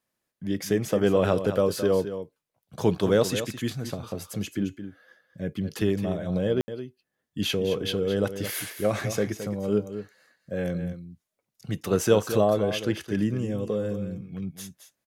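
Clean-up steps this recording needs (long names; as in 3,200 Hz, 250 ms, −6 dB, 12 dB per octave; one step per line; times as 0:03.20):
ambience match 0:06.61–0:06.68
echo removal 217 ms −10.5 dB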